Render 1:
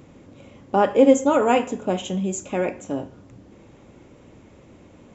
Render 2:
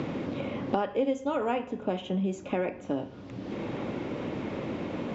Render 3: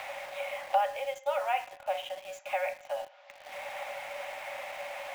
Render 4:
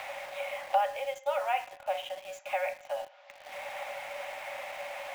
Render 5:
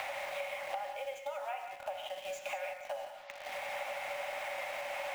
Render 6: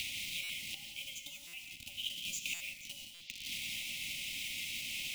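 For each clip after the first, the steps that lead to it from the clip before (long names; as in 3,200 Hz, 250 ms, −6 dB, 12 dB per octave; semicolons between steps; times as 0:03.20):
low-pass filter 4,800 Hz 24 dB per octave; multiband upward and downward compressor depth 100%; level −7 dB
Chebyshev high-pass with heavy ripple 550 Hz, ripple 9 dB; in parallel at −5.5 dB: bit reduction 8 bits; on the sum: level +2.5 dB
no processing that can be heard
downward compressor 10 to 1, threshold −41 dBFS, peak gain reduction 20 dB; reverb whose tail is shaped and stops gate 210 ms rising, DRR 5 dB; level +4 dB
inverse Chebyshev band-stop filter 450–1,700 Hz, stop band 40 dB; buffer that repeats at 0:00.43/0:01.47/0:02.54/0:03.14, samples 256, times 10; level +10.5 dB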